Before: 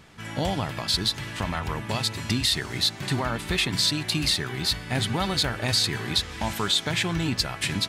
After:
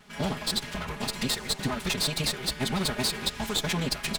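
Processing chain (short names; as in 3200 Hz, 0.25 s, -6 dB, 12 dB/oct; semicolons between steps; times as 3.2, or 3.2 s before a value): minimum comb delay 4.8 ms; time stretch by phase-locked vocoder 0.53×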